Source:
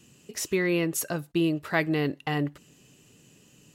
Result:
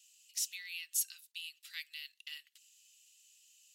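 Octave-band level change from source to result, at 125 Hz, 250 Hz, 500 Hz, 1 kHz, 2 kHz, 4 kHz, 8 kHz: below −40 dB, below −40 dB, below −40 dB, below −40 dB, −15.0 dB, −4.5 dB, −2.5 dB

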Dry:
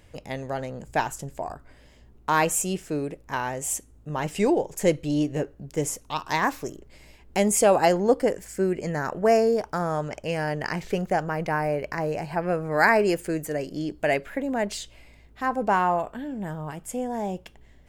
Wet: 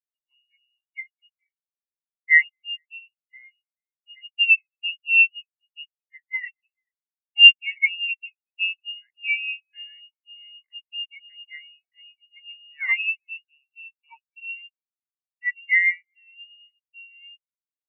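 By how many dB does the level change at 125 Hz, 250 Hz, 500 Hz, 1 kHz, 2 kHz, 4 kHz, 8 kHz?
below −40 dB, below −40 dB, below −40 dB, below −30 dB, +9.5 dB, +16.5 dB, below −40 dB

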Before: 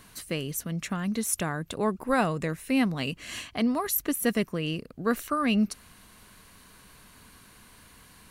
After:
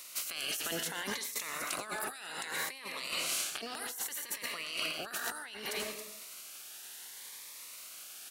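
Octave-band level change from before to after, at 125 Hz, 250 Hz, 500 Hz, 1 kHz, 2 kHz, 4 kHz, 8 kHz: −23.0, −23.0, −13.5, −10.0, −3.0, +1.0, −1.5 decibels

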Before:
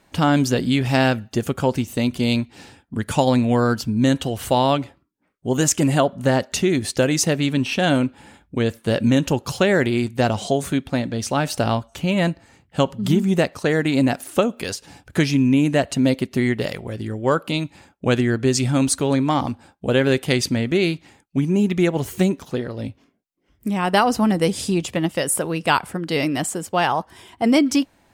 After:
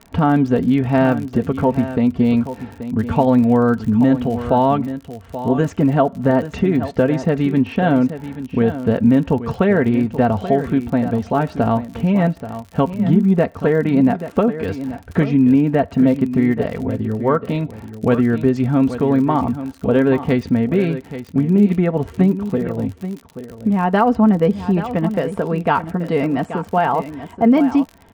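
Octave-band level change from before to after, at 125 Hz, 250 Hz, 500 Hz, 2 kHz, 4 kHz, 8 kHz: +3.0 dB, +4.5 dB, +3.0 dB, −3.0 dB, below −10 dB, below −20 dB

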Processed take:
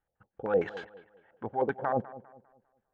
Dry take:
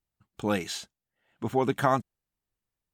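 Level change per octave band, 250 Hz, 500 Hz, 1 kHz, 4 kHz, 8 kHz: −7.0 dB, 0.0 dB, −4.5 dB, below −15 dB, below −30 dB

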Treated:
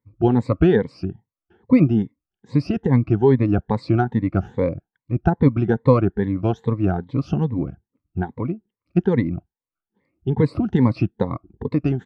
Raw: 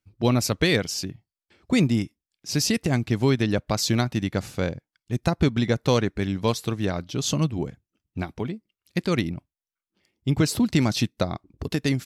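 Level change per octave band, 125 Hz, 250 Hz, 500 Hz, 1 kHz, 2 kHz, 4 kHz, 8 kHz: +5.0 dB, +5.0 dB, +5.5 dB, +4.0 dB, −4.0 dB, below −15 dB, below −25 dB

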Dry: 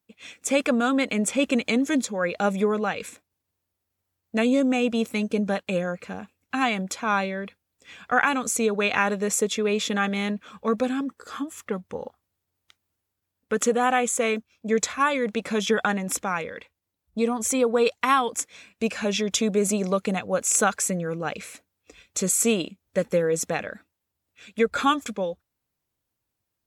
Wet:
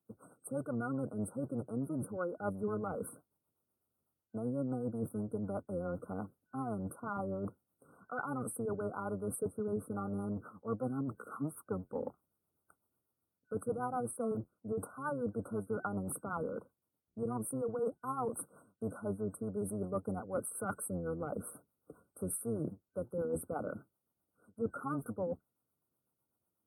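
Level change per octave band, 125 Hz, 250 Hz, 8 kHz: −6.0, −13.0, −19.0 decibels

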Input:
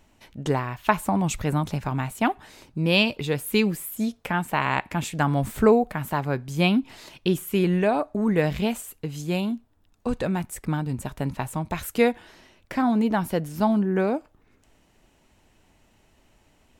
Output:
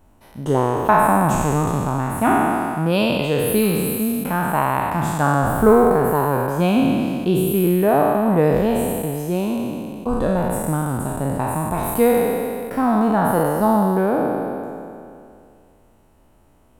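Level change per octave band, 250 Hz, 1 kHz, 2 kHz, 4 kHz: +5.5, +9.0, +2.5, −1.5 decibels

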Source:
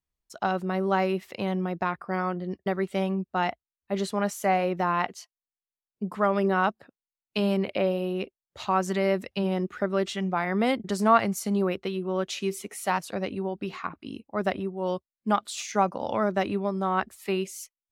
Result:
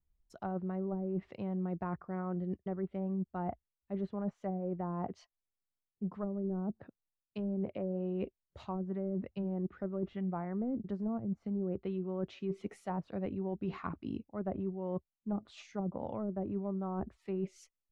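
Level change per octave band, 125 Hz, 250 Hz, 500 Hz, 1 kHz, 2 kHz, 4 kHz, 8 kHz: −5.5 dB, −6.5 dB, −11.5 dB, −17.5 dB, −23.0 dB, below −20 dB, below −25 dB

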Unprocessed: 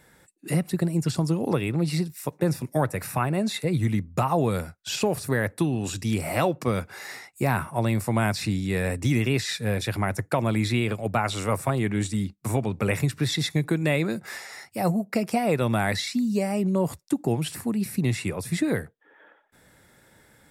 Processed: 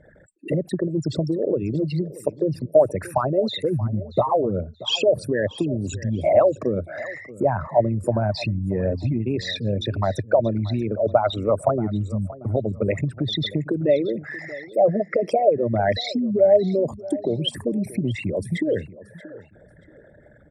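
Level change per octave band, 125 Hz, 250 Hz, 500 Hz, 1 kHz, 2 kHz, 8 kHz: −0.5 dB, 0.0 dB, +8.5 dB, +2.5 dB, −3.5 dB, can't be measured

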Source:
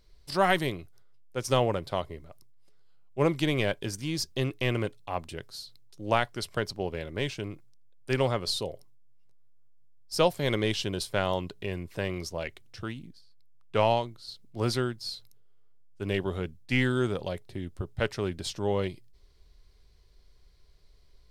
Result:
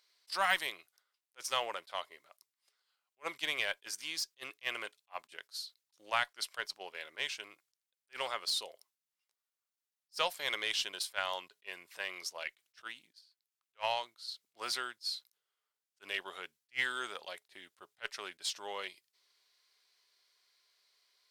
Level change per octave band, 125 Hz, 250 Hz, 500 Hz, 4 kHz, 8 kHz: −34.5, −26.0, −15.5, −1.5, −2.0 decibels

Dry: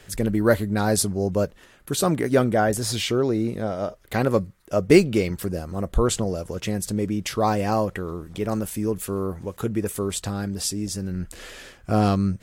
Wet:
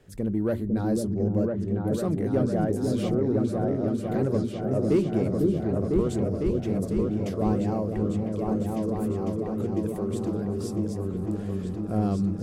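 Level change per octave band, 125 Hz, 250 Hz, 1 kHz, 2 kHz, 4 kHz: −1.0 dB, −0.5 dB, −8.5 dB, −15.0 dB, below −15 dB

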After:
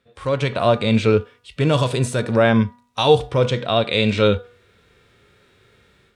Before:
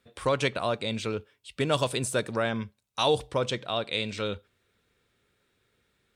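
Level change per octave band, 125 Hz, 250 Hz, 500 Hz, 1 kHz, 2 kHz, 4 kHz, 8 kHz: +14.5, +13.5, +10.5, +8.5, +8.0, +6.5, +1.5 decibels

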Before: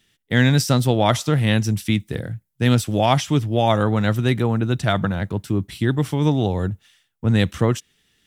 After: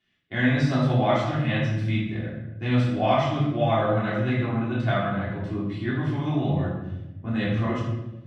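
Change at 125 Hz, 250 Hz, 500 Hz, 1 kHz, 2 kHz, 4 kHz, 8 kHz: −5.0 dB, −4.5 dB, −4.0 dB, −3.5 dB, −3.5 dB, −9.0 dB, below −20 dB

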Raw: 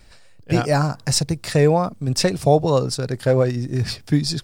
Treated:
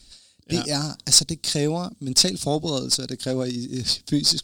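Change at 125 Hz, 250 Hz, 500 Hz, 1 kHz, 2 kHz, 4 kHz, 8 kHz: −9.5, −3.5, −9.5, −10.5, −8.0, +6.5, +6.0 decibels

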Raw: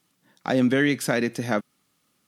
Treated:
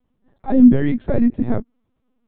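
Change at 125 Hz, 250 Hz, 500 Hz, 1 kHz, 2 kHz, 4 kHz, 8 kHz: +6.5 dB, +9.5 dB, +0.5 dB, −1.0 dB, −10.5 dB, below −10 dB, below −40 dB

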